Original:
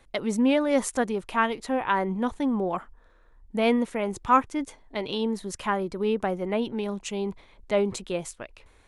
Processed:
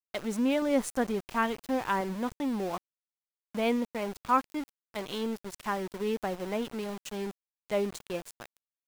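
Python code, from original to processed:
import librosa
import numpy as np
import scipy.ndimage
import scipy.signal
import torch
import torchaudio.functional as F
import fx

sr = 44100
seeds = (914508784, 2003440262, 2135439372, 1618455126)

y = fx.low_shelf(x, sr, hz=310.0, db=6.0, at=(0.62, 2.01))
y = np.where(np.abs(y) >= 10.0 ** (-32.5 / 20.0), y, 0.0)
y = y * librosa.db_to_amplitude(-5.5)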